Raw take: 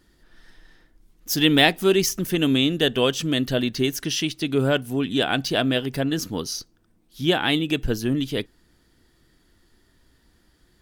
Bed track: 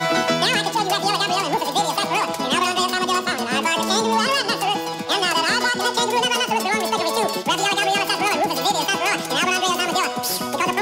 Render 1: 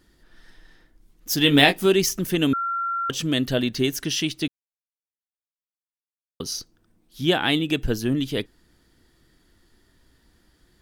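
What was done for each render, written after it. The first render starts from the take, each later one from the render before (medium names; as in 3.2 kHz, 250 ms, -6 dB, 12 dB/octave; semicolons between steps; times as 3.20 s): 1.43–1.86 s: doubling 21 ms -6.5 dB; 2.53–3.10 s: bleep 1.37 kHz -23 dBFS; 4.48–6.40 s: mute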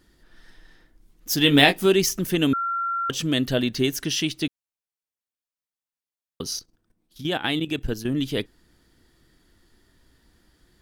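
6.59–8.16 s: level held to a coarse grid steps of 12 dB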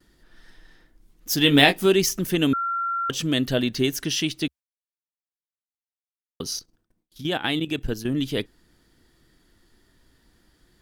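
gate with hold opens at -54 dBFS; peaking EQ 69 Hz -4.5 dB 0.34 oct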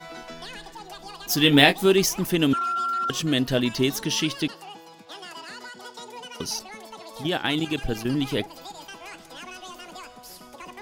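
add bed track -20.5 dB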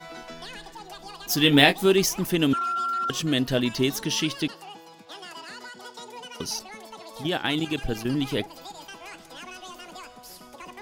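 trim -1 dB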